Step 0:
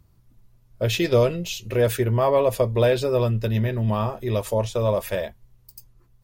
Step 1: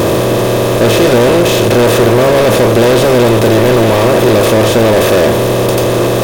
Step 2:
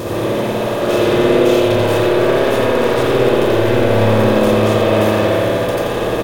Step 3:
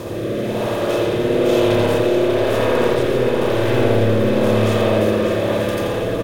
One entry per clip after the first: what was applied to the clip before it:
per-bin compression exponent 0.2; sample leveller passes 5; bell 310 Hz +6 dB 1.3 oct; gain -7.5 dB
on a send: echo 84 ms -7 dB; on the sum: spring tank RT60 3 s, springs 56 ms, chirp 30 ms, DRR -7 dB; gain -13.5 dB
rotary speaker horn 1 Hz; echo 0.593 s -6.5 dB; gain -2.5 dB

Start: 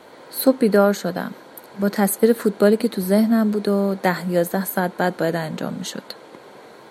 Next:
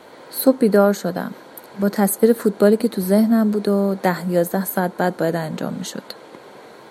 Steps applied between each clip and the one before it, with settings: dynamic EQ 2700 Hz, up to -5 dB, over -37 dBFS, Q 0.8; gain +1.5 dB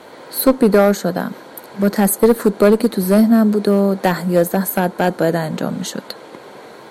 one-sided clip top -10 dBFS; gain +4 dB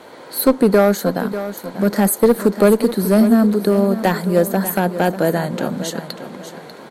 feedback echo 0.593 s, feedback 34%, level -12 dB; gain -1 dB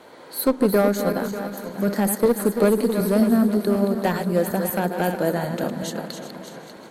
regenerating reverse delay 0.188 s, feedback 51%, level -7.5 dB; gain -6 dB

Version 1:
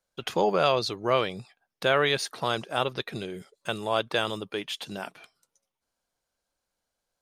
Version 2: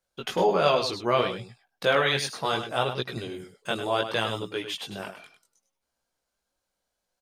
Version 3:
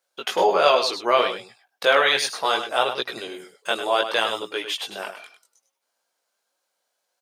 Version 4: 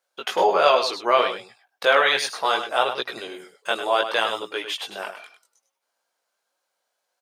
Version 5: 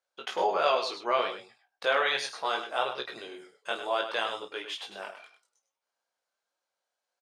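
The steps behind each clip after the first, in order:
chorus voices 2, 0.67 Hz, delay 19 ms, depth 2.8 ms; echo 0.101 s -9.5 dB; gain +3.5 dB
HPF 460 Hz 12 dB/oct; gain +6 dB
bell 1100 Hz +4 dB 2.8 oct; gain -3 dB
LPF 8500 Hz 12 dB/oct; doubler 30 ms -10 dB; gain -8.5 dB

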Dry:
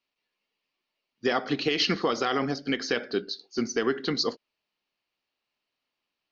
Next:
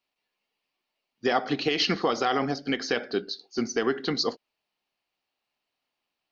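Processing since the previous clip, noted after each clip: bell 760 Hz +5.5 dB 0.46 oct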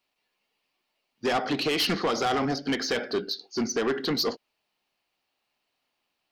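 soft clip -25.5 dBFS, distortion -9 dB; gain +4.5 dB

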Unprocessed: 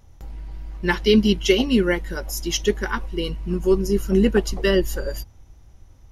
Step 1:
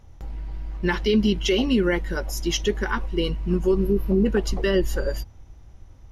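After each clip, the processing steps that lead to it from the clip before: spectral repair 3.83–4.23, 1200–11000 Hz before; high shelf 6300 Hz -9.5 dB; limiter -14 dBFS, peak gain reduction 9 dB; gain +2 dB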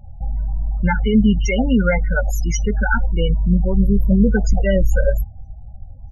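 band shelf 3700 Hz -8.5 dB 1.1 oct; comb 1.4 ms, depth 86%; loudest bins only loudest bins 16; gain +5.5 dB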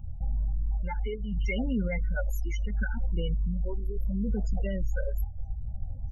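limiter -11 dBFS, peak gain reduction 7 dB; reverse; compressor 6:1, threshold -26 dBFS, peak gain reduction 12 dB; reverse; phaser stages 8, 0.72 Hz, lowest notch 170–1900 Hz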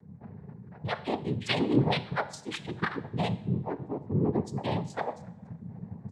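noise vocoder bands 6; two-slope reverb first 0.67 s, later 1.9 s, from -17 dB, DRR 12.5 dB; AGC gain up to 5 dB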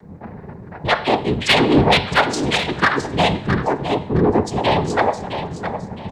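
octaver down 1 oct, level -2 dB; overdrive pedal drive 19 dB, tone 5000 Hz, clips at -9 dBFS; feedback echo 0.663 s, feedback 29%, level -9 dB; gain +6.5 dB

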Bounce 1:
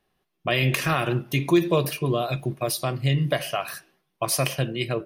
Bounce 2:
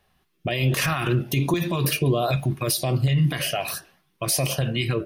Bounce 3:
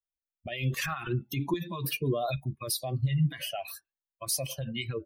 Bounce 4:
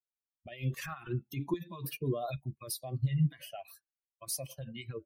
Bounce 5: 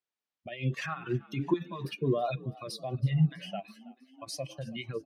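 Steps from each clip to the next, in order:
bell 77 Hz +7 dB 0.77 oct; limiter -20 dBFS, peak gain reduction 11 dB; LFO notch saw up 1.3 Hz 270–2500 Hz; gain +7.5 dB
per-bin expansion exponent 2; gain -4 dB
dynamic EQ 3500 Hz, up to -4 dB, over -46 dBFS, Q 0.9; upward expander 1.5:1, over -49 dBFS; gain -1.5 dB
BPF 140–4400 Hz; frequency-shifting echo 0.325 s, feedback 55%, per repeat +41 Hz, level -21 dB; ending taper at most 450 dB/s; gain +6 dB

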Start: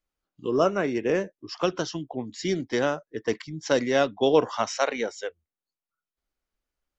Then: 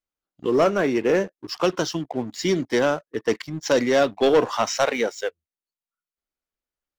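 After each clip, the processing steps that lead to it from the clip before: low shelf 83 Hz -7.5 dB; sample leveller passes 2; gain -1.5 dB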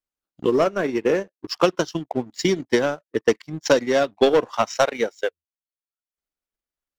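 transient shaper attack +8 dB, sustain -11 dB; vibrato 0.98 Hz 10 cents; gain -2.5 dB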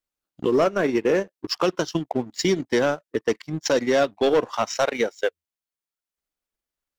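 limiter -15 dBFS, peak gain reduction 9.5 dB; gain +2.5 dB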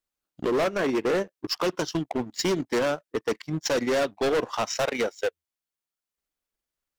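overloaded stage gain 21 dB

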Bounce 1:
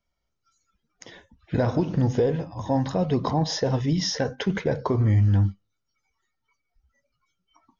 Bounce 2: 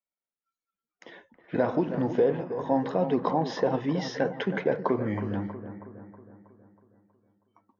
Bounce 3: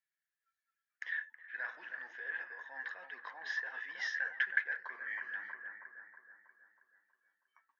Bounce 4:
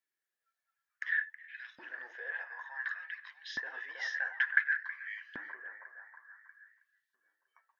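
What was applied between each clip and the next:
gate -59 dBFS, range -16 dB; three-band isolator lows -24 dB, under 190 Hz, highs -19 dB, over 3200 Hz; analogue delay 0.32 s, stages 4096, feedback 53%, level -11 dB
reverse; compressor 6:1, threshold -32 dBFS, peak gain reduction 13 dB; reverse; resonant high-pass 1700 Hz, resonance Q 15; gain -4 dB
LFO high-pass saw up 0.56 Hz 260–3800 Hz

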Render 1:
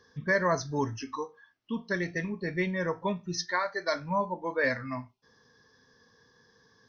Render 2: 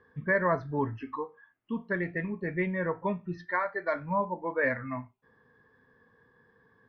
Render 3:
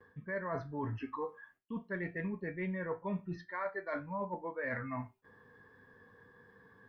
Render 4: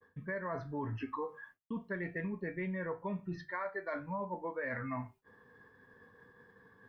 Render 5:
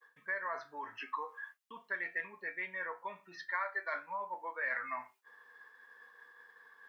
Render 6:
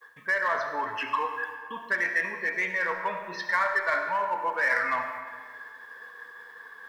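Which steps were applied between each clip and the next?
LPF 2400 Hz 24 dB/oct
reverse; compressor 10:1, threshold -38 dBFS, peak gain reduction 17 dB; reverse; gate with hold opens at -58 dBFS; resonator 97 Hz, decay 0.2 s, harmonics all, mix 60%; gain +7.5 dB
expander -56 dBFS; notches 50/100/150 Hz; compressor, threshold -38 dBFS, peak gain reduction 6 dB; gain +3.5 dB
HPF 1100 Hz 12 dB/oct; gain +6 dB
bell 81 Hz +14 dB 0.71 oct; in parallel at -6 dB: hard clip -38 dBFS, distortion -8 dB; on the sum: digital reverb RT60 1.8 s, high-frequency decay 0.7×, pre-delay 30 ms, DRR 5.5 dB; gain +8.5 dB

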